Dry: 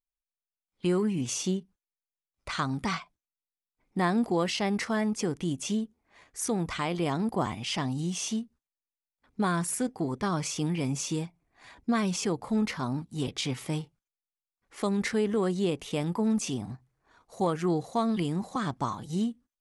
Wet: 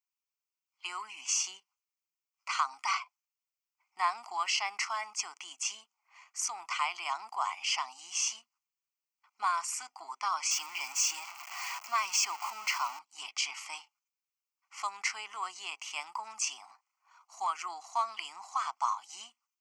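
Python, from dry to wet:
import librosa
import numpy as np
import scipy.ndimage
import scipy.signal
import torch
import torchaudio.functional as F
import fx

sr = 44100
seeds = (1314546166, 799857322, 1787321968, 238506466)

y = fx.zero_step(x, sr, step_db=-34.0, at=(10.51, 12.99))
y = scipy.signal.sosfilt(scipy.signal.butter(4, 890.0, 'highpass', fs=sr, output='sos'), y)
y = fx.fixed_phaser(y, sr, hz=2500.0, stages=8)
y = y * librosa.db_to_amplitude(4.5)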